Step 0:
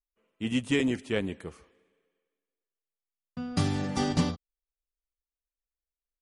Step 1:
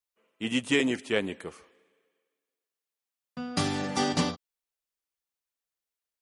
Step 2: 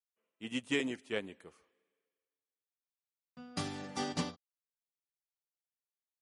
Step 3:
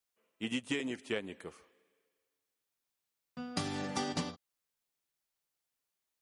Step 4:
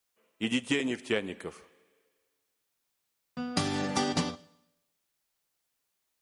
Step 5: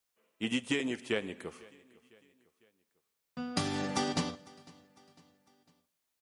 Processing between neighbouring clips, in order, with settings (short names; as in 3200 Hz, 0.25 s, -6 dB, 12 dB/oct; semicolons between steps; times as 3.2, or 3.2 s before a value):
HPF 380 Hz 6 dB/oct; gain +4.5 dB
upward expander 1.5:1, over -36 dBFS; gain -7.5 dB
compressor 6:1, threshold -40 dBFS, peak gain reduction 13 dB; gain +8 dB
Schroeder reverb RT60 0.86 s, combs from 29 ms, DRR 20 dB; gain +6.5 dB
feedback echo 0.502 s, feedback 48%, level -23.5 dB; gain -3 dB